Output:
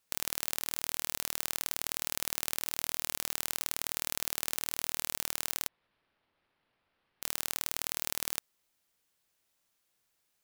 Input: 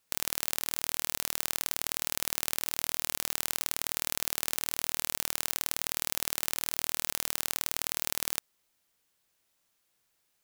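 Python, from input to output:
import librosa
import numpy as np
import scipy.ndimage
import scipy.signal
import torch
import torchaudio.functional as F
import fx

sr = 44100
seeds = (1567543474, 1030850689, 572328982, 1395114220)

y = fx.resample_linear(x, sr, factor=6, at=(5.68, 7.22))
y = y * 10.0 ** (-2.5 / 20.0)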